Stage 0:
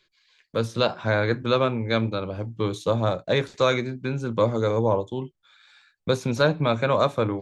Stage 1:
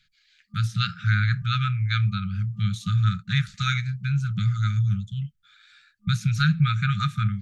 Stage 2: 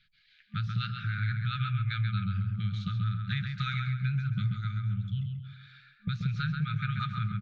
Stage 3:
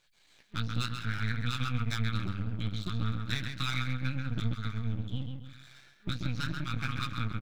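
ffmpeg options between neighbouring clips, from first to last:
-af "afftfilt=real='re*(1-between(b*sr/4096,210,1200))':imag='im*(1-between(b*sr/4096,210,1200))':win_size=4096:overlap=0.75,lowshelf=f=390:g=7.5"
-filter_complex "[0:a]lowpass=f=4200:w=0.5412,lowpass=f=4200:w=1.3066,acompressor=threshold=0.0398:ratio=6,asplit=2[s0][s1];[s1]adelay=134,lowpass=f=2900:p=1,volume=0.631,asplit=2[s2][s3];[s3]adelay=134,lowpass=f=2900:p=1,volume=0.41,asplit=2[s4][s5];[s5]adelay=134,lowpass=f=2900:p=1,volume=0.41,asplit=2[s6][s7];[s7]adelay=134,lowpass=f=2900:p=1,volume=0.41,asplit=2[s8][s9];[s9]adelay=134,lowpass=f=2900:p=1,volume=0.41[s10];[s2][s4][s6][s8][s10]amix=inputs=5:normalize=0[s11];[s0][s11]amix=inputs=2:normalize=0,volume=0.841"
-filter_complex "[0:a]highshelf=f=3700:g=10.5,asplit=2[s0][s1];[s1]adelay=17,volume=0.447[s2];[s0][s2]amix=inputs=2:normalize=0,aeval=exprs='max(val(0),0)':c=same"

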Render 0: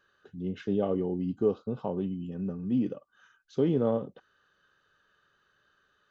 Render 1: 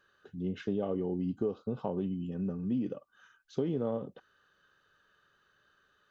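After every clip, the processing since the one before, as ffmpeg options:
-af "acompressor=threshold=0.0398:ratio=6"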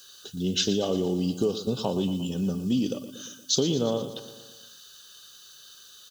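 -filter_complex "[0:a]asplit=2[s0][s1];[s1]aecho=0:1:117|234|351|468|585|702:0.224|0.132|0.0779|0.046|0.0271|0.016[s2];[s0][s2]amix=inputs=2:normalize=0,aexciter=amount=14.6:drive=8:freq=3300,volume=2.11"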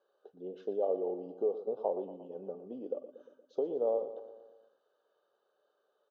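-af "asuperpass=centerf=590:order=4:qfactor=1.6,volume=0.891"

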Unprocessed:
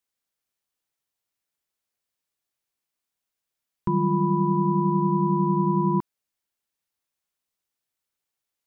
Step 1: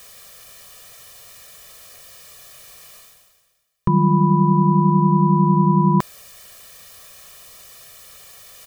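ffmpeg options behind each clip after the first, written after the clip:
-af "aecho=1:1:1.7:0.88,areverse,acompressor=mode=upward:threshold=0.0562:ratio=2.5,areverse,volume=2.24"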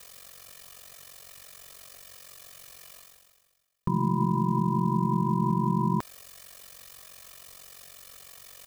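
-filter_complex "[0:a]aeval=exprs='val(0)*sin(2*PI*23*n/s)':c=same,asplit=2[s0][s1];[s1]acrusher=bits=5:mode=log:mix=0:aa=0.000001,volume=0.316[s2];[s0][s2]amix=inputs=2:normalize=0,alimiter=limit=0.266:level=0:latency=1:release=101,volume=0.596"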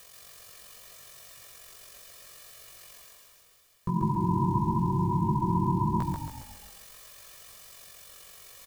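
-filter_complex "[0:a]acompressor=mode=upward:threshold=0.00398:ratio=2.5,flanger=delay=16:depth=6:speed=0.8,asplit=8[s0][s1][s2][s3][s4][s5][s6][s7];[s1]adelay=137,afreqshift=-31,volume=0.708[s8];[s2]adelay=274,afreqshift=-62,volume=0.355[s9];[s3]adelay=411,afreqshift=-93,volume=0.178[s10];[s4]adelay=548,afreqshift=-124,volume=0.0881[s11];[s5]adelay=685,afreqshift=-155,volume=0.0442[s12];[s6]adelay=822,afreqshift=-186,volume=0.0221[s13];[s7]adelay=959,afreqshift=-217,volume=0.0111[s14];[s0][s8][s9][s10][s11][s12][s13][s14]amix=inputs=8:normalize=0"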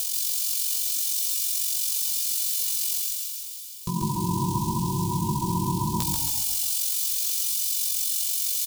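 -af "aexciter=amount=13.5:drive=3.4:freq=2700"

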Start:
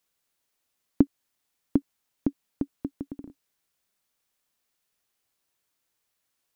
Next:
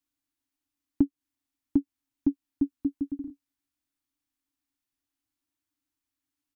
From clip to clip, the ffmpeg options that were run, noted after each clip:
-af "firequalizer=gain_entry='entry(120,0);entry(190,-19);entry(280,13);entry(420,-19);entry(770,-8)':delay=0.05:min_phase=1,acompressor=threshold=0.141:ratio=6,volume=0.75"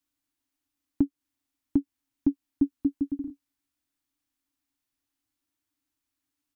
-af "alimiter=limit=0.178:level=0:latency=1:release=97,volume=1.33"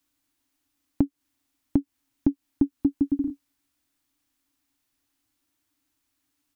-af "acompressor=threshold=0.0501:ratio=6,volume=2.51"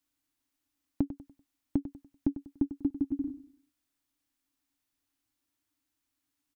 -af "aecho=1:1:97|194|291|388:0.224|0.0806|0.029|0.0104,volume=0.447"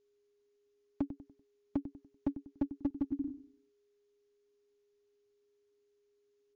-filter_complex "[0:a]acrossover=split=510[s0][s1];[s0]aeval=exprs='clip(val(0),-1,0.0596)':c=same[s2];[s2][s1]amix=inputs=2:normalize=0,aeval=exprs='val(0)+0.000398*sin(2*PI*410*n/s)':c=same,volume=0.708" -ar 16000 -c:a libmp3lame -b:a 64k

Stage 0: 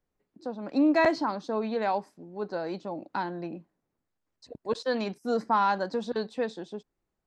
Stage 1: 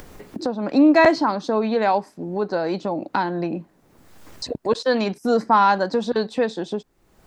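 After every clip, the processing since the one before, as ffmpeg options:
-af "acompressor=mode=upward:threshold=0.0447:ratio=2.5,volume=2.66"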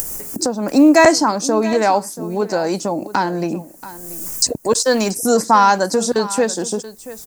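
-af "aexciter=amount=14.3:drive=5.4:freq=5700,aecho=1:1:682:0.15,volume=1.58"

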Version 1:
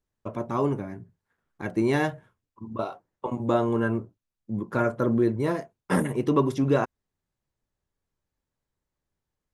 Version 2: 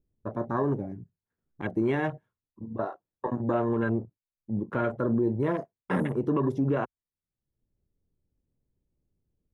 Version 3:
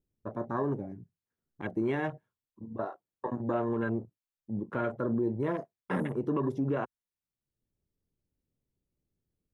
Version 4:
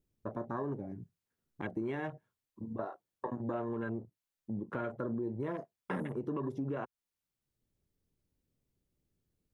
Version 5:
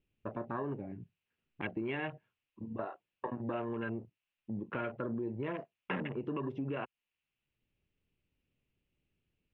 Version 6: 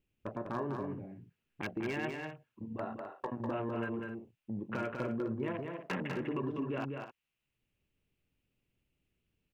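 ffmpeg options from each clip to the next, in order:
-filter_complex "[0:a]acrossover=split=470|2500[s0][s1][s2];[s0]acompressor=mode=upward:threshold=0.01:ratio=2.5[s3];[s3][s1][s2]amix=inputs=3:normalize=0,afwtdn=0.0158,alimiter=limit=0.133:level=0:latency=1:release=46"
-af "lowshelf=f=74:g=-6.5,volume=0.668"
-af "acompressor=threshold=0.01:ratio=2.5,volume=1.33"
-af "lowpass=f=2700:t=q:w=5.2,volume=0.891"
-filter_complex "[0:a]aeval=exprs='0.0398*(abs(mod(val(0)/0.0398+3,4)-2)-1)':c=same,asplit=2[s0][s1];[s1]aecho=0:1:198.3|256.6:0.562|0.251[s2];[s0][s2]amix=inputs=2:normalize=0"

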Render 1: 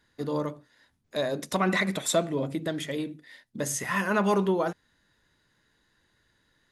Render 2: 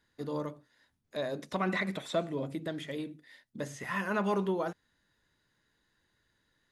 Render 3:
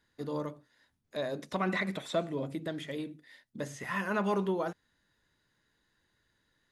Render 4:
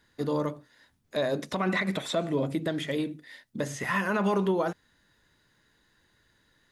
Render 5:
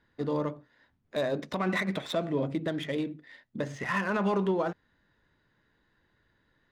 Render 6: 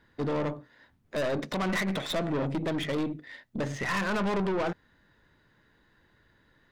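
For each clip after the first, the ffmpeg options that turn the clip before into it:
-filter_complex "[0:a]acrossover=split=4300[s0][s1];[s1]acompressor=threshold=0.00355:ratio=4:attack=1:release=60[s2];[s0][s2]amix=inputs=2:normalize=0,volume=0.501"
-af anull
-af "alimiter=level_in=1.26:limit=0.0631:level=0:latency=1:release=91,volume=0.794,volume=2.51"
-af "adynamicsmooth=sensitivity=6.5:basefreq=3000,volume=0.841"
-af "aeval=exprs='(tanh(44.7*val(0)+0.35)-tanh(0.35))/44.7':c=same,volume=2.24"

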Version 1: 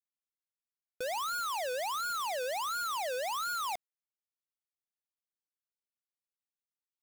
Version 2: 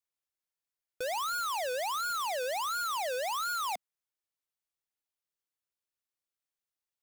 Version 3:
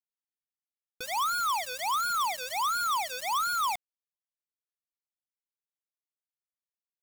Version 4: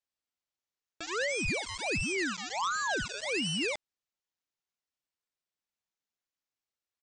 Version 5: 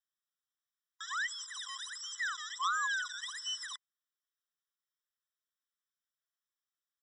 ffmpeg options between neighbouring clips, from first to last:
-af "equalizer=f=220:t=o:w=0.37:g=-11,volume=1.19"
-af "aecho=1:1:0.9:1,acrusher=bits=6:mix=0:aa=0.000001"
-af "aresample=16000,asoftclip=type=tanh:threshold=0.0211,aresample=44100,aeval=exprs='val(0)*sin(2*PI*840*n/s+840*0.9/0.57*sin(2*PI*0.57*n/s))':c=same,volume=2.24"
-af "afftfilt=real='re*eq(mod(floor(b*sr/1024/1000),2),1)':imag='im*eq(mod(floor(b*sr/1024/1000),2),1)':win_size=1024:overlap=0.75"

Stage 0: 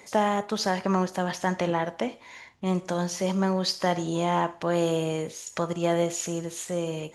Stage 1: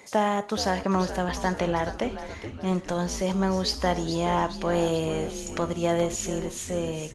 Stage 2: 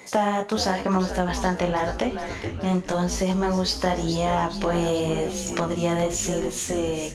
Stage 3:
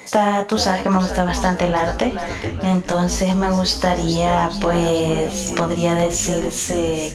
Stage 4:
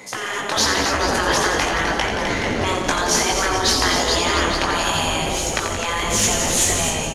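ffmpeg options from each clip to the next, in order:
-filter_complex "[0:a]asplit=7[s0][s1][s2][s3][s4][s5][s6];[s1]adelay=424,afreqshift=-130,volume=0.282[s7];[s2]adelay=848,afreqshift=-260,volume=0.16[s8];[s3]adelay=1272,afreqshift=-390,volume=0.0912[s9];[s4]adelay=1696,afreqshift=-520,volume=0.0525[s10];[s5]adelay=2120,afreqshift=-650,volume=0.0299[s11];[s6]adelay=2544,afreqshift=-780,volume=0.017[s12];[s0][s7][s8][s9][s10][s11][s12]amix=inputs=7:normalize=0"
-filter_complex "[0:a]asplit=2[s0][s1];[s1]aeval=exprs='sgn(val(0))*max(abs(val(0))-0.00891,0)':c=same,volume=0.282[s2];[s0][s2]amix=inputs=2:normalize=0,flanger=delay=15.5:depth=7.3:speed=0.93,acompressor=threshold=0.0251:ratio=2,volume=2.66"
-af "bandreject=f=370:w=12,volume=2"
-filter_complex "[0:a]afftfilt=real='re*lt(hypot(re,im),0.316)':imag='im*lt(hypot(re,im),0.316)':win_size=1024:overlap=0.75,dynaudnorm=f=160:g=5:m=2.51,asplit=2[s0][s1];[s1]aecho=0:1:87.46|174.9|256.6:0.447|0.355|0.447[s2];[s0][s2]amix=inputs=2:normalize=0,volume=0.891"

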